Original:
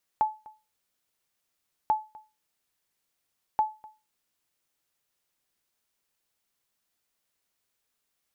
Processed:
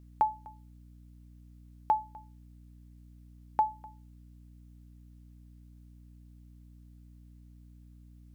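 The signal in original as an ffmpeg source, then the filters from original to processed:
-f lavfi -i "aevalsrc='0.158*(sin(2*PI*863*mod(t,1.69))*exp(-6.91*mod(t,1.69)/0.28)+0.0708*sin(2*PI*863*max(mod(t,1.69)-0.25,0))*exp(-6.91*max(mod(t,1.69)-0.25,0)/0.28))':d=5.07:s=44100"
-af "aeval=exprs='val(0)+0.00251*(sin(2*PI*60*n/s)+sin(2*PI*2*60*n/s)/2+sin(2*PI*3*60*n/s)/3+sin(2*PI*4*60*n/s)/4+sin(2*PI*5*60*n/s)/5)':c=same"

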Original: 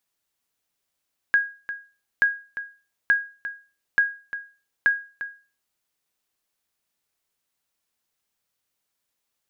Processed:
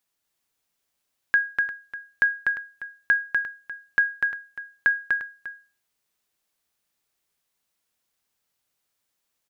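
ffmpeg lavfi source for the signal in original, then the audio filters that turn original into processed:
-f lavfi -i "aevalsrc='0.282*(sin(2*PI*1640*mod(t,0.88))*exp(-6.91*mod(t,0.88)/0.35)+0.224*sin(2*PI*1640*max(mod(t,0.88)-0.35,0))*exp(-6.91*max(mod(t,0.88)-0.35,0)/0.35))':d=4.4:s=44100"
-af "aecho=1:1:246:0.668"

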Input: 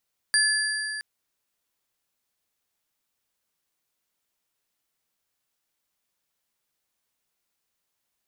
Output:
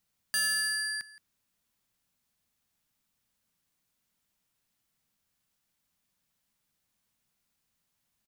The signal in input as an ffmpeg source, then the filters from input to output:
-f lavfi -i "aevalsrc='0.0944*pow(10,-3*t/3.37)*sin(2*PI*1720*t)+0.0841*pow(10,-3*t/2.486)*sin(2*PI*4742*t)+0.075*pow(10,-3*t/2.031)*sin(2*PI*9294.9*t)':d=0.67:s=44100"
-af "lowshelf=f=280:t=q:w=1.5:g=7,asoftclip=type=tanh:threshold=-25.5dB,aecho=1:1:170:0.119"

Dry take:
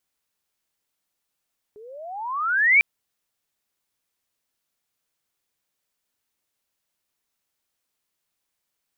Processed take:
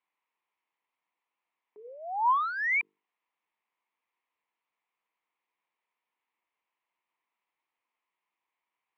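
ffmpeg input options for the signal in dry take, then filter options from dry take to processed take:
-f lavfi -i "aevalsrc='pow(10,(-11+30.5*(t/1.05-1))/20)*sin(2*PI*409*1.05/(30.5*log(2)/12)*(exp(30.5*log(2)/12*t/1.05)-1))':d=1.05:s=44100"
-af "bandreject=f=50:t=h:w=6,bandreject=f=100:t=h:w=6,bandreject=f=150:t=h:w=6,bandreject=f=200:t=h:w=6,bandreject=f=250:t=h:w=6,bandreject=f=300:t=h:w=6,bandreject=f=350:t=h:w=6,bandreject=f=400:t=h:w=6,bandreject=f=450:t=h:w=6,asoftclip=type=hard:threshold=-26.5dB,highpass=f=240:w=0.5412,highpass=f=240:w=1.3066,equalizer=f=260:t=q:w=4:g=-9,equalizer=f=400:t=q:w=4:g=-4,equalizer=f=590:t=q:w=4:g=-8,equalizer=f=990:t=q:w=4:g=9,equalizer=f=1.5k:t=q:w=4:g=-9,equalizer=f=2.2k:t=q:w=4:g=4,lowpass=f=2.6k:w=0.5412,lowpass=f=2.6k:w=1.3066"

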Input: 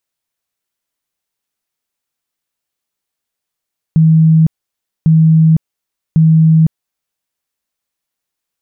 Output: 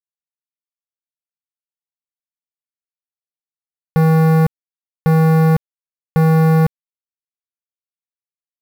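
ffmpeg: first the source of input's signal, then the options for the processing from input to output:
-f lavfi -i "aevalsrc='0.596*sin(2*PI*160*mod(t,1.1))*lt(mod(t,1.1),81/160)':d=3.3:s=44100"
-filter_complex "[0:a]asplit=2[a][b];[b]acontrast=86,volume=-1.5dB[c];[a][c]amix=inputs=2:normalize=0,acrusher=bits=5:dc=4:mix=0:aa=0.000001,asoftclip=type=hard:threshold=-11dB"

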